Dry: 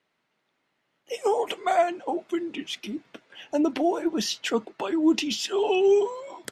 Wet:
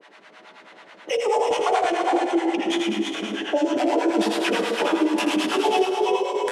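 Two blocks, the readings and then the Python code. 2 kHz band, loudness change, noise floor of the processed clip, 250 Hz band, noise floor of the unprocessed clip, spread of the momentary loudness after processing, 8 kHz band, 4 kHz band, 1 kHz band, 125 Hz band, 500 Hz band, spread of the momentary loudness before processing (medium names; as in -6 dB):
+8.0 dB, +3.5 dB, -50 dBFS, +3.5 dB, -76 dBFS, 4 LU, +1.5 dB, +4.0 dB, +6.0 dB, no reading, +2.5 dB, 12 LU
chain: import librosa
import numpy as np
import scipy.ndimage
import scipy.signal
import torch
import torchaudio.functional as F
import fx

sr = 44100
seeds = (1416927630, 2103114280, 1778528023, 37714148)

y = fx.tracing_dist(x, sr, depth_ms=0.24)
y = fx.doubler(y, sr, ms=15.0, db=-12.5)
y = fx.over_compress(y, sr, threshold_db=-24.0, ratio=-1.0)
y = scipy.signal.sosfilt(scipy.signal.butter(2, 320.0, 'highpass', fs=sr, output='sos'), y)
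y = fx.high_shelf(y, sr, hz=3000.0, db=-9.0)
y = fx.rev_fdn(y, sr, rt60_s=1.8, lf_ratio=0.7, hf_ratio=0.95, size_ms=95.0, drr_db=-2.0)
y = fx.harmonic_tremolo(y, sr, hz=9.3, depth_pct=100, crossover_hz=650.0)
y = scipy.signal.sosfilt(scipy.signal.butter(4, 9700.0, 'lowpass', fs=sr, output='sos'), y)
y = fx.echo_multitap(y, sr, ms=(81, 334, 405), db=(-5.5, -6.5, -11.0))
y = fx.band_squash(y, sr, depth_pct=70)
y = y * librosa.db_to_amplitude(6.0)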